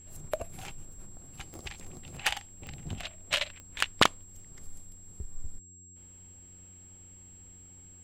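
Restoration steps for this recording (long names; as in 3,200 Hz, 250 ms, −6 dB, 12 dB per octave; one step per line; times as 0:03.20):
click removal
hum removal 90.1 Hz, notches 4
notch filter 7,600 Hz, Q 30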